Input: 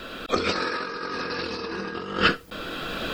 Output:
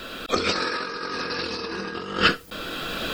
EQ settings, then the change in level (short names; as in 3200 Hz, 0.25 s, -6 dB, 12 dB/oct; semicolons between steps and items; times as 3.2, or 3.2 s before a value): high shelf 4000 Hz +7 dB; 0.0 dB